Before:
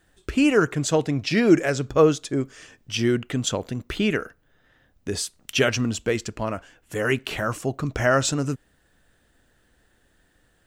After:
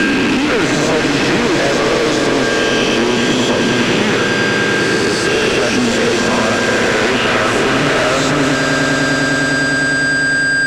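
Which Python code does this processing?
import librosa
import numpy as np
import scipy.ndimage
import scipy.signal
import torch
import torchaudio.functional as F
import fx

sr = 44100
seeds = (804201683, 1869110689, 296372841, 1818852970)

p1 = fx.spec_swells(x, sr, rise_s=1.01)
p2 = scipy.signal.sosfilt(scipy.signal.butter(4, 160.0, 'highpass', fs=sr, output='sos'), p1)
p3 = fx.level_steps(p2, sr, step_db=21)
p4 = p2 + F.gain(torch.from_numpy(p3), 0.0).numpy()
p5 = p4 + 10.0 ** (-33.0 / 20.0) * np.sin(2.0 * np.pi * 1600.0 * np.arange(len(p4)) / sr)
p6 = fx.fuzz(p5, sr, gain_db=35.0, gate_db=-40.0)
p7 = fx.air_absorb(p6, sr, metres=93.0)
p8 = fx.echo_swell(p7, sr, ms=101, loudest=5, wet_db=-10.0)
p9 = fx.band_squash(p8, sr, depth_pct=100)
y = F.gain(torch.from_numpy(p9), -1.0).numpy()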